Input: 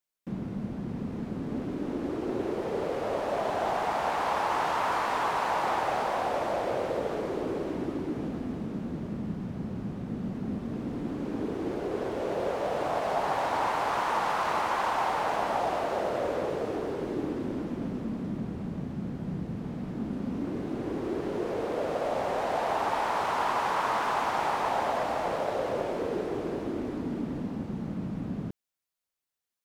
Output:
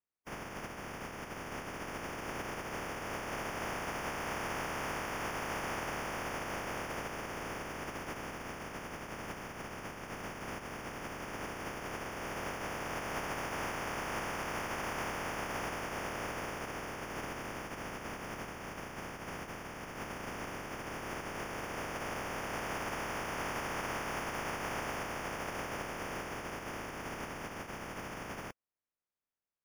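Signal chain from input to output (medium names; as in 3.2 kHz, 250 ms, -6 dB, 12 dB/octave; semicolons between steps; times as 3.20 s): spectral contrast reduction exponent 0.12; boxcar filter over 11 samples; trim -2 dB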